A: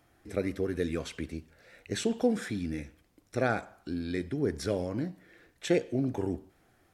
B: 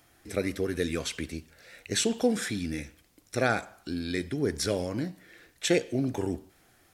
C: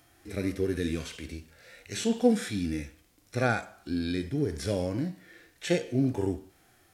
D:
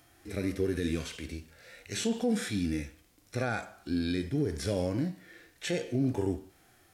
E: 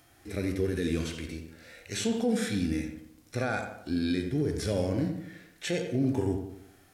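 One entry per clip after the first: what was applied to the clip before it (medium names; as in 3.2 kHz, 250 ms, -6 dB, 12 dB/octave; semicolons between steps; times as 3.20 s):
treble shelf 2.2 kHz +10 dB; trim +1 dB
harmonic-percussive split percussive -15 dB; trim +4 dB
peak limiter -20 dBFS, peak gain reduction 9.5 dB
filtered feedback delay 86 ms, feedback 49%, low-pass 2 kHz, level -7 dB; trim +1 dB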